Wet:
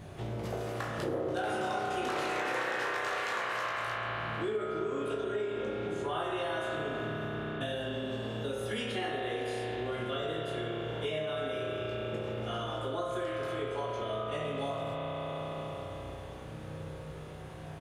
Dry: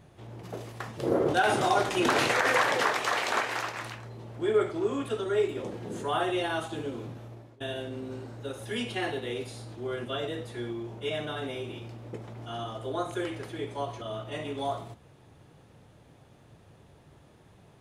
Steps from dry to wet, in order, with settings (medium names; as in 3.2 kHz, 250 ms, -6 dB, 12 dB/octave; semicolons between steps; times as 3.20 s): 5.32–6.17 s: treble shelf 9.9 kHz -10.5 dB; early reflections 19 ms -5 dB, 34 ms -9 dB; spring tank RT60 3.5 s, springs 32 ms, chirp 65 ms, DRR -1.5 dB; compression 5:1, threshold -40 dBFS, peak gain reduction 21.5 dB; trim +6.5 dB